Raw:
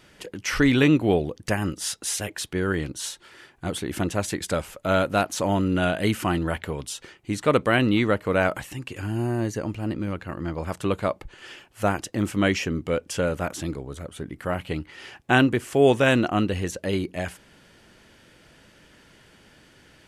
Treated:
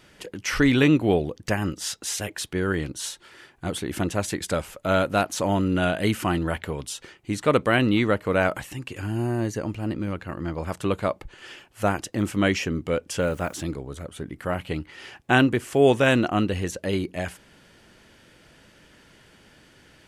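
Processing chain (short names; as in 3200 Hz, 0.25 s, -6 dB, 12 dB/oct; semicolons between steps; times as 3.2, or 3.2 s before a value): 1.37–2.18 bell 9900 Hz -6 dB 0.31 oct; 13.19–13.6 added noise blue -60 dBFS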